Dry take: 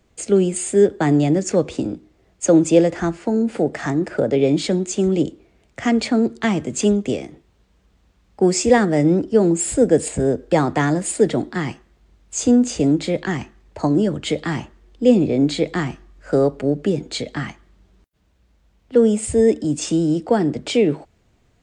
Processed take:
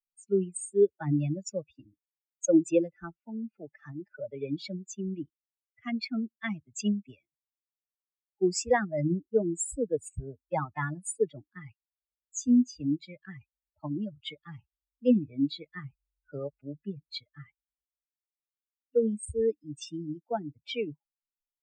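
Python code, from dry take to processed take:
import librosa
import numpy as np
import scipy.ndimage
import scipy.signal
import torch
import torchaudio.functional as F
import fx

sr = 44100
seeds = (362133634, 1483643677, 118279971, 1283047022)

y = fx.bin_expand(x, sr, power=3.0)
y = y * 10.0 ** (-5.0 / 20.0)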